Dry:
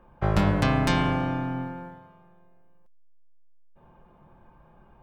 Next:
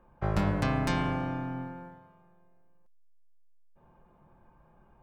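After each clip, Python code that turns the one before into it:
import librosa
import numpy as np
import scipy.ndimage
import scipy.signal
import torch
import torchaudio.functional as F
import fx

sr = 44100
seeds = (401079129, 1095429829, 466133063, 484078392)

y = fx.peak_eq(x, sr, hz=3300.0, db=-3.5, octaves=0.6)
y = y * 10.0 ** (-5.5 / 20.0)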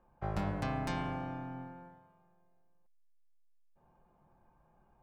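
y = fx.peak_eq(x, sr, hz=760.0, db=6.0, octaves=0.3)
y = y * 10.0 ** (-8.0 / 20.0)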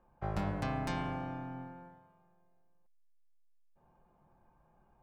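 y = x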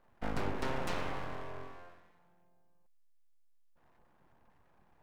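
y = np.abs(x)
y = y * 10.0 ** (2.0 / 20.0)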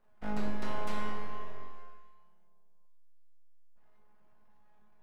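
y = fx.comb_fb(x, sr, f0_hz=210.0, decay_s=0.67, harmonics='all', damping=0.0, mix_pct=90)
y = y * 10.0 ** (11.5 / 20.0)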